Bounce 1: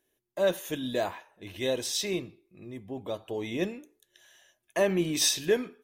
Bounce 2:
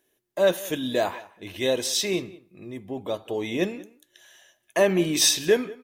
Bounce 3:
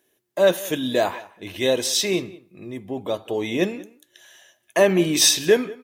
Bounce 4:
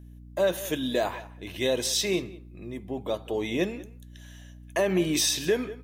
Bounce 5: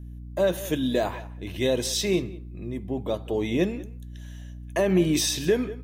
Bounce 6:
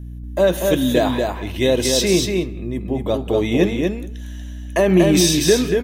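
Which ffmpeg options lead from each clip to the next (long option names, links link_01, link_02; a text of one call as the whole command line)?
ffmpeg -i in.wav -filter_complex "[0:a]lowshelf=frequency=93:gain=-8,asplit=2[link_01][link_02];[link_02]adelay=186.6,volume=-21dB,highshelf=frequency=4000:gain=-4.2[link_03];[link_01][link_03]amix=inputs=2:normalize=0,volume=5.5dB" out.wav
ffmpeg -i in.wav -af "highpass=66,volume=3.5dB" out.wav
ffmpeg -i in.wav -af "alimiter=limit=-11dB:level=0:latency=1:release=109,aeval=exprs='val(0)+0.00891*(sin(2*PI*60*n/s)+sin(2*PI*2*60*n/s)/2+sin(2*PI*3*60*n/s)/3+sin(2*PI*4*60*n/s)/4+sin(2*PI*5*60*n/s)/5)':channel_layout=same,volume=-4dB" out.wav
ffmpeg -i in.wav -af "lowshelf=frequency=330:gain=9,volume=-1dB" out.wav
ffmpeg -i in.wav -af "aecho=1:1:237:0.631,volume=7dB" out.wav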